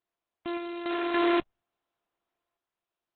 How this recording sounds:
a buzz of ramps at a fixed pitch in blocks of 128 samples
sample-and-hold tremolo 3.5 Hz, depth 75%
Opus

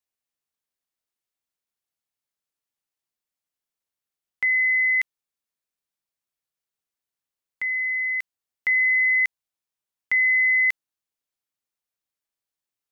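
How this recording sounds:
background noise floor −89 dBFS
spectral slope −1.5 dB per octave

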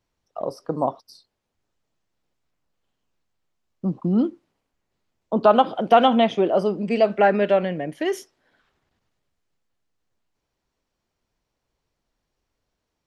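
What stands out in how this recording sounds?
background noise floor −80 dBFS
spectral slope −4.5 dB per octave

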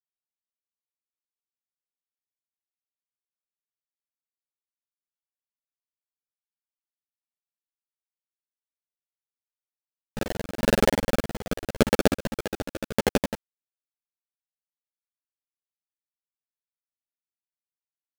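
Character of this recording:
aliases and images of a low sample rate 1,100 Hz, jitter 20%
tremolo saw down 0.85 Hz, depth 85%
a quantiser's noise floor 6 bits, dither none
a shimmering, thickened sound

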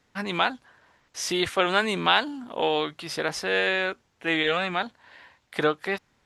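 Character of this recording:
background noise floor −69 dBFS
spectral slope −3.0 dB per octave

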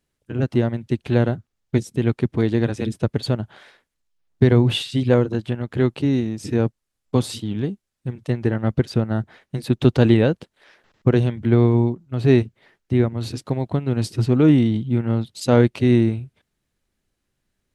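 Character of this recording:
background noise floor −78 dBFS
spectral slope −8.0 dB per octave

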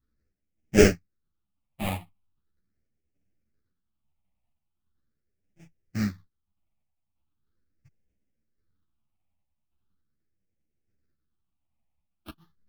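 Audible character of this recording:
aliases and images of a low sample rate 1,000 Hz, jitter 20%
phaser sweep stages 6, 0.4 Hz, lowest notch 400–1,100 Hz
sample-and-hold tremolo
a shimmering, thickened sound

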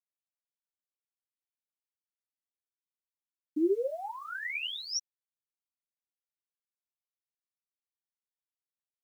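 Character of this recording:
phaser sweep stages 12, 0.46 Hz, lowest notch 720–4,200 Hz
a quantiser's noise floor 12 bits, dither none
a shimmering, thickened sound

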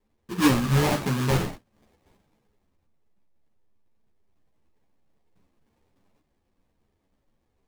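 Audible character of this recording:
aliases and images of a low sample rate 1,400 Hz, jitter 20%
a shimmering, thickened sound

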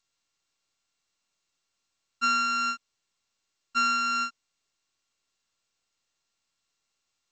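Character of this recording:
a buzz of ramps at a fixed pitch in blocks of 32 samples
G.722

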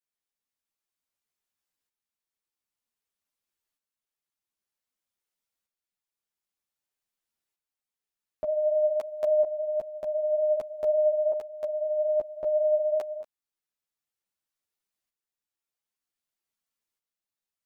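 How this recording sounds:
tremolo saw up 0.53 Hz, depth 55%
a shimmering, thickened sound

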